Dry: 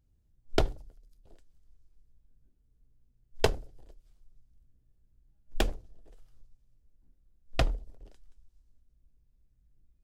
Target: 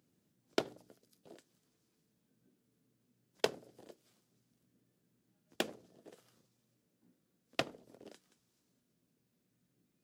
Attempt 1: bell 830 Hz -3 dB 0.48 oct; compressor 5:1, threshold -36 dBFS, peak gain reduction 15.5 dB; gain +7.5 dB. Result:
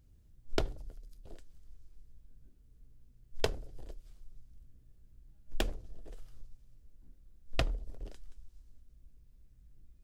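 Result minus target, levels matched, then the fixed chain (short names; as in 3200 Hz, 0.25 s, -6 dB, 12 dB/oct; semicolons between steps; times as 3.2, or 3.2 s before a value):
125 Hz band +15.0 dB
bell 830 Hz -3 dB 0.48 oct; compressor 5:1, threshold -36 dBFS, peak gain reduction 15.5 dB; HPF 170 Hz 24 dB/oct; gain +7.5 dB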